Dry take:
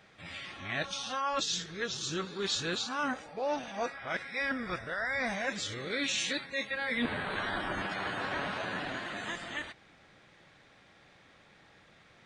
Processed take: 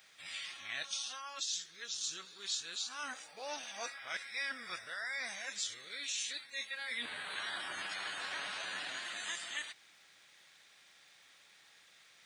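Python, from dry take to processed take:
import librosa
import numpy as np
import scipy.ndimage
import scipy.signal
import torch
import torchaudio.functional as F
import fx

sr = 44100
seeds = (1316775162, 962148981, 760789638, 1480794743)

y = scipy.signal.lfilter([1.0, -0.97], [1.0], x)
y = fx.rider(y, sr, range_db=5, speed_s=0.5)
y = fx.dmg_crackle(y, sr, seeds[0], per_s=450.0, level_db=-65.0)
y = scipy.signal.sosfilt(scipy.signal.butter(2, 76.0, 'highpass', fs=sr, output='sos'), y)
y = F.gain(torch.from_numpy(y), 3.5).numpy()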